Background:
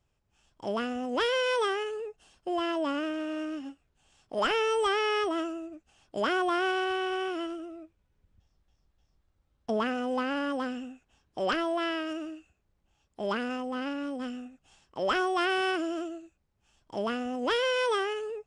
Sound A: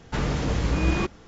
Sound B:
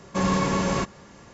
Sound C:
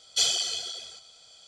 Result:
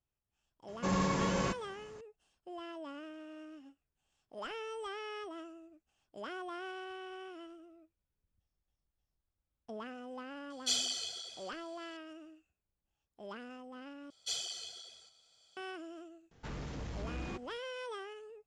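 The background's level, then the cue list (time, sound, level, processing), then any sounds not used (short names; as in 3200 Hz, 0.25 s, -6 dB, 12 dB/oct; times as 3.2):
background -15.5 dB
0.68 add B -8.5 dB
10.5 add C -8.5 dB
14.1 replace with C -14 dB
16.31 add A -15 dB + soft clip -20 dBFS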